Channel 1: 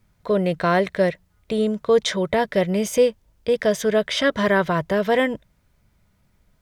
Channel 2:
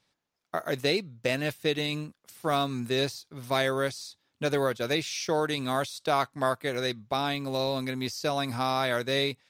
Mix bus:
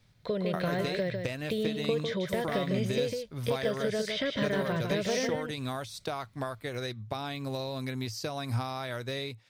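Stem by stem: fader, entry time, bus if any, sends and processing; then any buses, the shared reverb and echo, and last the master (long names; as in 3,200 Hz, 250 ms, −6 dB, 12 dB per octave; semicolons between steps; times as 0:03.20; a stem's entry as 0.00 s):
−8.5 dB, 0.00 s, no send, echo send −5.5 dB, de-essing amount 95%; octave-band graphic EQ 125/500/1,000/2,000/4,000 Hz +11/+5/−4/+6/+11 dB; downward compressor 5 to 1, threshold −20 dBFS, peak gain reduction 11 dB
+0.5 dB, 0.00 s, no send, no echo send, downward compressor 6 to 1, threshold −33 dBFS, peak gain reduction 12 dB; parametric band 110 Hz +14.5 dB 0.36 octaves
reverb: not used
echo: single-tap delay 152 ms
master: no processing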